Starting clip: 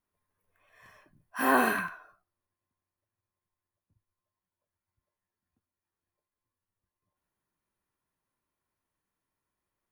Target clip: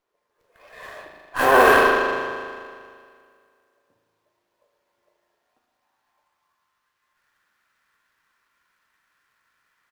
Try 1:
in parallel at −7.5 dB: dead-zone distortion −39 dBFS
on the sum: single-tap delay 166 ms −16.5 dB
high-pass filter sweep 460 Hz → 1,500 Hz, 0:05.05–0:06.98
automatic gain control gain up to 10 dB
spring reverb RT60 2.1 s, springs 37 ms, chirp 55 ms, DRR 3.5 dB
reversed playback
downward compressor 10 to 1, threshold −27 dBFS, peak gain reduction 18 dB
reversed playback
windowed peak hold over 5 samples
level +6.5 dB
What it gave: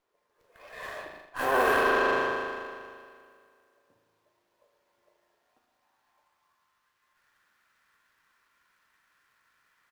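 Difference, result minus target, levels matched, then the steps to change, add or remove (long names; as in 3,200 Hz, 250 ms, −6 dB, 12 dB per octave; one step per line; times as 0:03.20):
downward compressor: peak gain reduction +10.5 dB
change: downward compressor 10 to 1, threshold −15.5 dBFS, peak gain reduction 7.5 dB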